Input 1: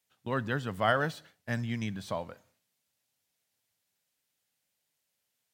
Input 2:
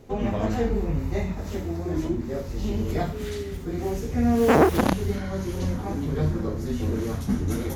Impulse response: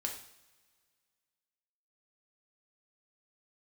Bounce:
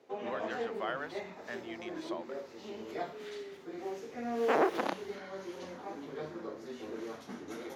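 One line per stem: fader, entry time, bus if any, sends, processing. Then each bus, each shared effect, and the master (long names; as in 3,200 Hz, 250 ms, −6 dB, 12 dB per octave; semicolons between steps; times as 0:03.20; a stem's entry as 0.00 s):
−2.0 dB, 0.00 s, no send, downward compressor 2 to 1, threshold −36 dBFS, peak gain reduction 8.5 dB
−10.0 dB, 0.00 s, send −10 dB, no processing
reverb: on, pre-delay 3 ms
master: high-pass filter 110 Hz 24 dB per octave; three-way crossover with the lows and the highs turned down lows −23 dB, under 320 Hz, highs −14 dB, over 5,500 Hz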